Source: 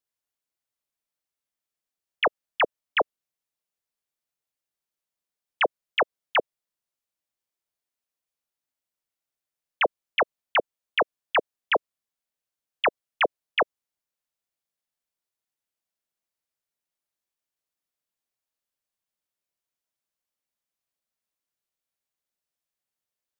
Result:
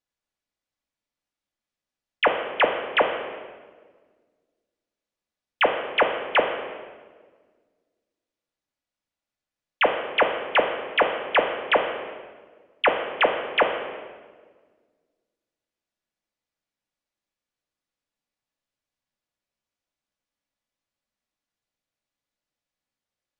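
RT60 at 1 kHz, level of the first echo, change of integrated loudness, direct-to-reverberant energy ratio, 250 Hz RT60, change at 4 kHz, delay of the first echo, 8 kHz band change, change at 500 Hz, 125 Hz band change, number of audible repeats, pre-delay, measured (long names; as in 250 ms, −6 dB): 1.4 s, no echo audible, +3.5 dB, 2.0 dB, 2.0 s, +2.5 dB, no echo audible, can't be measured, +5.0 dB, can't be measured, no echo audible, 3 ms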